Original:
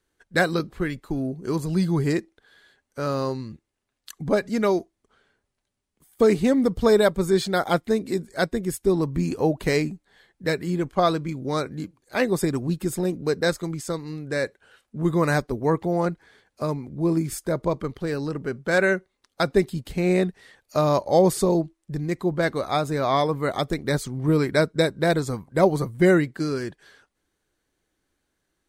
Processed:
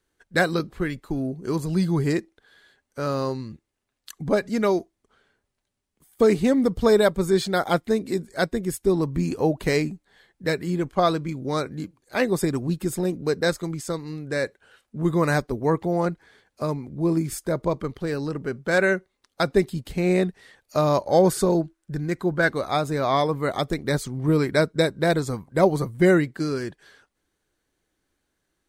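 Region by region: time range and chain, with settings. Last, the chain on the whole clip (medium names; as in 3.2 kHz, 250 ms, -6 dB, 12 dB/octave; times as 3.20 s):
21.06–22.49 s: peaking EQ 1.5 kHz +12 dB 0.22 oct + de-esser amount 25%
whole clip: none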